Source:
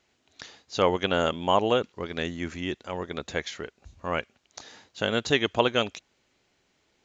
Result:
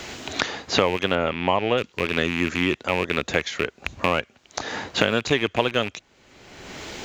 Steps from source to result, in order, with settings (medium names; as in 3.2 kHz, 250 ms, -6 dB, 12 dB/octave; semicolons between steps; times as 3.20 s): rattle on loud lows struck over -40 dBFS, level -21 dBFS; 1.15–1.78 s: low-pass 2.4 kHz 12 dB/octave; three bands compressed up and down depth 100%; trim +3.5 dB